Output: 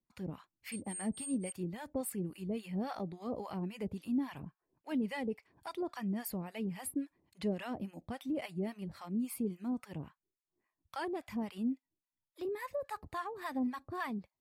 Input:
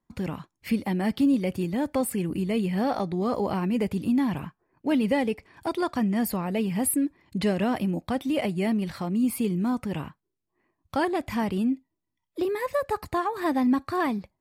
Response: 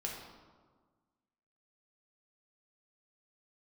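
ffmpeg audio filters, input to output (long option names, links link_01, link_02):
-filter_complex "[0:a]asettb=1/sr,asplit=3[link_01][link_02][link_03];[link_01]atrim=end=0.724[link_04];[link_02]atrim=start=0.72:end=1.52,asetpts=PTS-STARTPTS,afade=type=in:duration=0.004:curve=qsin,afade=type=out:start_time=0.796:duration=0.004:curve=qsin,aeval=exprs='val(0)+0.0282*sin(2*PI*8600*n/s)':channel_layout=same[link_05];[link_03]atrim=start=1.516[link_06];[link_04][link_05]acrossfade=duration=0.004:curve1=hsin:curve2=qsin[link_07];[link_07][link_06]acrossfade=duration=0.004:curve1=qsin:curve2=hsin,acrossover=split=740[link_08][link_09];[link_08]aeval=exprs='val(0)*(1-1/2+1/2*cos(2*PI*3.6*n/s))':channel_layout=same[link_10];[link_09]aeval=exprs='val(0)*(1-1/2-1/2*cos(2*PI*3.6*n/s))':channel_layout=same[link_11];[link_10][link_11]amix=inputs=2:normalize=0,volume=-8dB"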